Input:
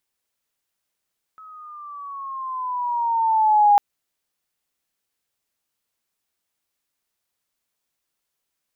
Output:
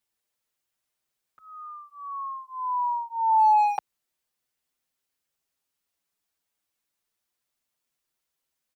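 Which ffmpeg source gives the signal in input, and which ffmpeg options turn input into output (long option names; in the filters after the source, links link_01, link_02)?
-f lavfi -i "aevalsrc='pow(10,(-10+30*(t/2.4-1))/20)*sin(2*PI*1290*2.4/(-8*log(2)/12)*(exp(-8*log(2)/12*t/2.4)-1))':duration=2.4:sample_rate=44100"
-filter_complex "[0:a]acrossover=split=840[link_01][link_02];[link_02]asoftclip=type=hard:threshold=-20.5dB[link_03];[link_01][link_03]amix=inputs=2:normalize=0,asplit=2[link_04][link_05];[link_05]adelay=6.4,afreqshift=0.29[link_06];[link_04][link_06]amix=inputs=2:normalize=1"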